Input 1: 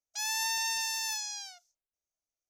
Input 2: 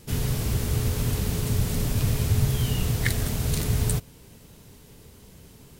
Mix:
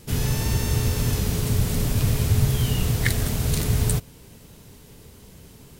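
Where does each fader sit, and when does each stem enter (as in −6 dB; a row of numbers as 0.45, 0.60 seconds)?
−6.0, +2.5 decibels; 0.00, 0.00 seconds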